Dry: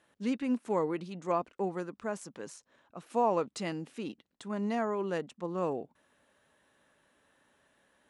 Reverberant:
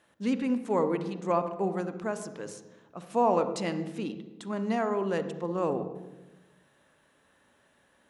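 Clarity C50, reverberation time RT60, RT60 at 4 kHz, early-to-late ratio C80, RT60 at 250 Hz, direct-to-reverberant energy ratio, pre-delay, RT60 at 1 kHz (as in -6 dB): 10.5 dB, 1.1 s, 0.80 s, 12.5 dB, 1.4 s, 10.0 dB, 40 ms, 1.0 s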